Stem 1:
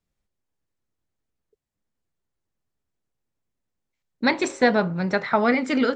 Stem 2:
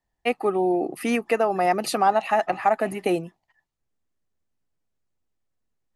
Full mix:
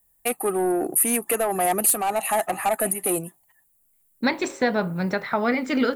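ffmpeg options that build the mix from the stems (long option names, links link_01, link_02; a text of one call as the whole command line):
ffmpeg -i stem1.wav -i stem2.wav -filter_complex "[0:a]volume=0dB,asplit=2[link_01][link_02];[1:a]asoftclip=type=tanh:threshold=-17.5dB,aexciter=amount=13.2:drive=9:freq=8000,acontrast=86,volume=1.5dB[link_03];[link_02]apad=whole_len=262827[link_04];[link_03][link_04]sidechaingate=range=-7dB:threshold=-33dB:ratio=16:detection=peak[link_05];[link_01][link_05]amix=inputs=2:normalize=0,alimiter=limit=-11.5dB:level=0:latency=1:release=370" out.wav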